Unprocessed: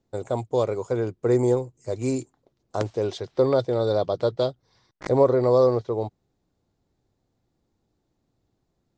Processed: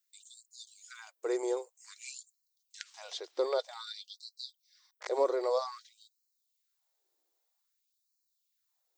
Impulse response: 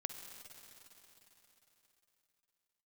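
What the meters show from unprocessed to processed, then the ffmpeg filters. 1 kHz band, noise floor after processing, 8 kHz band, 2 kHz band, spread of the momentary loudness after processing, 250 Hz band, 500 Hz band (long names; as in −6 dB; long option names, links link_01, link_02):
−10.0 dB, −81 dBFS, can't be measured, −6.5 dB, 20 LU, −17.5 dB, −13.0 dB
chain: -filter_complex "[0:a]acrossover=split=5800[link_01][link_02];[link_02]acompressor=threshold=-60dB:ratio=4:attack=1:release=60[link_03];[link_01][link_03]amix=inputs=2:normalize=0,aemphasis=mode=production:type=riaa,afftfilt=real='re*gte(b*sr/1024,280*pow(4000/280,0.5+0.5*sin(2*PI*0.52*pts/sr)))':imag='im*gte(b*sr/1024,280*pow(4000/280,0.5+0.5*sin(2*PI*0.52*pts/sr)))':win_size=1024:overlap=0.75,volume=-7.5dB"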